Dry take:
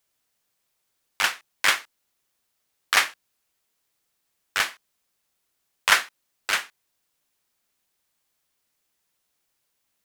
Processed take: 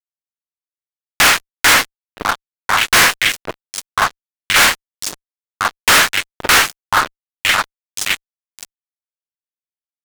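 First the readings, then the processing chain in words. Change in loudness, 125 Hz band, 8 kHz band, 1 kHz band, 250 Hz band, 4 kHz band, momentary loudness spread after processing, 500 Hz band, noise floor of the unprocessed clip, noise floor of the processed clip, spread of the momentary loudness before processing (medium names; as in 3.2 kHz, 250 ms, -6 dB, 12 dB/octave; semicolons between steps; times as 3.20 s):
+9.5 dB, no reading, +15.0 dB, +14.5 dB, +22.0 dB, +13.0 dB, 15 LU, +16.5 dB, -76 dBFS, under -85 dBFS, 9 LU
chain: wow and flutter 23 cents; on a send: repeats whose band climbs or falls 524 ms, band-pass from 400 Hz, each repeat 1.4 oct, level -10 dB; on the sum: frequency shift -94 Hz; fuzz box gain 42 dB, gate -44 dBFS; trim +5 dB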